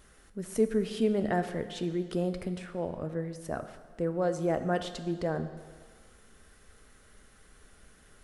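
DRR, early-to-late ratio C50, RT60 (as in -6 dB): 9.0 dB, 11.0 dB, 1.6 s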